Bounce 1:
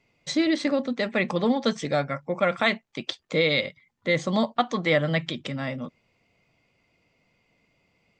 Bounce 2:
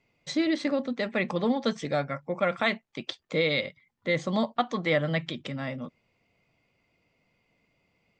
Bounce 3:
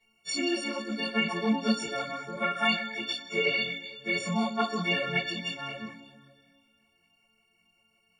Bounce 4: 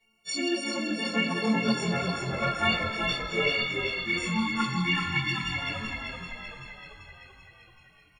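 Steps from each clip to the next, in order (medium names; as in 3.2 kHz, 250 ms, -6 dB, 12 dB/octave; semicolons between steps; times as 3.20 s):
treble shelf 6.3 kHz -5.5 dB; trim -3 dB
partials quantised in pitch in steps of 4 st; reverberation, pre-delay 3 ms, DRR -2.5 dB; three-phase chorus; trim -3.5 dB
chunks repeated in reverse 129 ms, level -11 dB; spectral selection erased 3.66–5.55 s, 370–760 Hz; frequency-shifting echo 386 ms, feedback 60%, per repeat -43 Hz, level -5 dB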